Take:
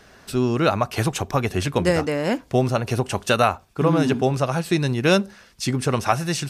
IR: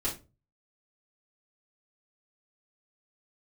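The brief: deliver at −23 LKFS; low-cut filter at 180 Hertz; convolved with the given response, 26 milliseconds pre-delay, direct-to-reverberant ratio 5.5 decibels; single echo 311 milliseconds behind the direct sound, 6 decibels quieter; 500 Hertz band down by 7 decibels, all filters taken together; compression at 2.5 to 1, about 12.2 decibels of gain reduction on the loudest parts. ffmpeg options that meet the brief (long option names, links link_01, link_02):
-filter_complex "[0:a]highpass=180,equalizer=frequency=500:width_type=o:gain=-9,acompressor=threshold=-35dB:ratio=2.5,aecho=1:1:311:0.501,asplit=2[link_01][link_02];[1:a]atrim=start_sample=2205,adelay=26[link_03];[link_02][link_03]afir=irnorm=-1:irlink=0,volume=-10.5dB[link_04];[link_01][link_04]amix=inputs=2:normalize=0,volume=10dB"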